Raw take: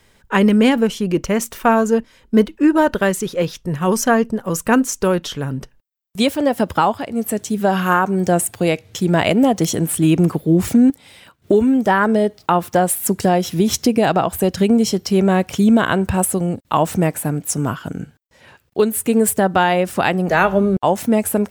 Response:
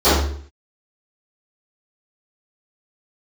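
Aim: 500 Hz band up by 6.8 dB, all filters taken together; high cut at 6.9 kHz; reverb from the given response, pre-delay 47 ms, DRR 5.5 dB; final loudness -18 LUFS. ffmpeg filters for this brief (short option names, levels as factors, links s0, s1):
-filter_complex "[0:a]lowpass=6900,equalizer=f=500:t=o:g=8.5,asplit=2[s0][s1];[1:a]atrim=start_sample=2205,adelay=47[s2];[s1][s2]afir=irnorm=-1:irlink=0,volume=0.0251[s3];[s0][s3]amix=inputs=2:normalize=0,volume=0.447"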